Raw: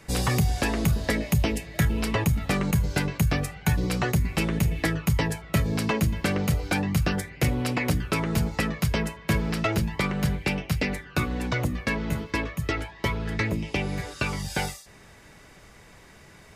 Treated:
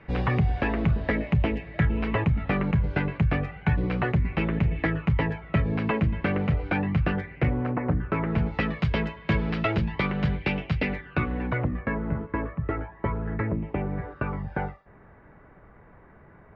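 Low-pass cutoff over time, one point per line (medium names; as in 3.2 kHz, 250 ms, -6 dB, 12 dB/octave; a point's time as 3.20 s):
low-pass 24 dB/octave
7.33 s 2.6 kHz
7.83 s 1.4 kHz
8.67 s 3.5 kHz
10.73 s 3.5 kHz
12.03 s 1.6 kHz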